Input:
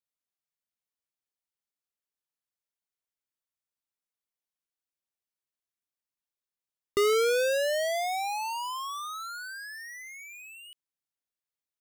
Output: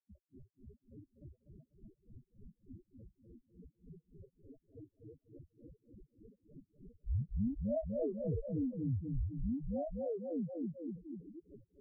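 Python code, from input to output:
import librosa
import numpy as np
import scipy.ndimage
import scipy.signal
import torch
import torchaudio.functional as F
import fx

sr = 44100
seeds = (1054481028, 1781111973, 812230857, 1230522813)

p1 = scipy.signal.sosfilt(scipy.signal.butter(4, 1000.0, 'highpass', fs=sr, output='sos'), x)
p2 = fx.high_shelf(p1, sr, hz=7200.0, db=10.5)
p3 = fx.sample_hold(p2, sr, seeds[0], rate_hz=1300.0, jitter_pct=0)
p4 = fx.rotary_switch(p3, sr, hz=0.65, then_hz=6.0, switch_at_s=3.47)
p5 = fx.granulator(p4, sr, seeds[1], grain_ms=193.0, per_s=3.4, spray_ms=100.0, spread_st=0)
p6 = fx.spec_topn(p5, sr, count=2)
p7 = p6 + fx.echo_feedback(p6, sr, ms=246, feedback_pct=26, wet_db=-7, dry=0)
p8 = fx.env_flatten(p7, sr, amount_pct=70)
y = p8 * librosa.db_to_amplitude(4.0)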